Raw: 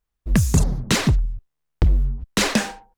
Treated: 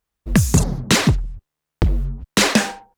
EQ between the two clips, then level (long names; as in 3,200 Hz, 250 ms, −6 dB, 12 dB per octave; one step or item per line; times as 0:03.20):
high-pass filter 100 Hz 6 dB per octave
+4.5 dB